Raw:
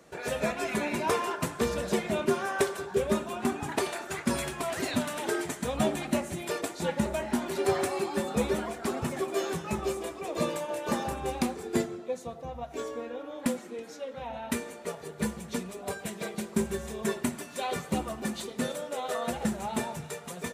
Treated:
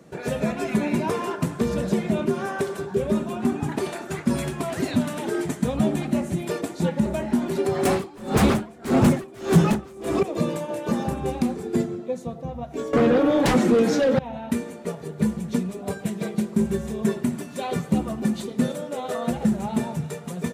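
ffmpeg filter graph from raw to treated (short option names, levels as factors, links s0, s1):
-filter_complex "[0:a]asettb=1/sr,asplit=3[s0][s1][s2];[s0]atrim=end=7.854[s3];[s1]atrim=start=7.85:end=10.23,asetpts=PTS-STARTPTS,afade=t=in:d=0.004:c=qsin,afade=t=out:st=2.376:d=0.004:c=qsin,aeval=exprs='0.178*sin(PI/2*5.01*val(0)/0.178)':c=same,aeval=exprs='val(0)*pow(10,-31*(0.5-0.5*cos(2*PI*1.7*n/s))/20)':c=same[s4];[s2]atrim=start=10.226[s5];[s3][s4]acrossfade=d=0.004:c1=hsin:c2=qsin[s6];[s6][s5]acrossfade=d=0.004:c1=qsin:c2=hsin,asettb=1/sr,asplit=3[s7][s8][s9];[s7]atrim=end=12.934[s10];[s8]atrim=start=12.93:end=14.19,asetpts=PTS-STARTPTS,afade=t=in:d=0.004:c=qsin,afade=t=out:st=1.256:d=0.004:c=qsin,acrossover=split=5900[s11][s12];[s12]acompressor=threshold=0.00112:ratio=4:attack=1:release=60[s13];[s11][s13]amix=inputs=2:normalize=0,aeval=exprs='0.178*sin(PI/2*8.91*val(0)/0.178)':c=same[s14];[s9]atrim=start=14.186[s15];[s10][s14]acrossfade=d=0.004:c1=hsin:c2=qsin[s16];[s16][s15]acrossfade=d=0.004:c1=qsin:c2=hsin,alimiter=limit=0.1:level=0:latency=1:release=86,equalizer=f=170:w=0.53:g=13"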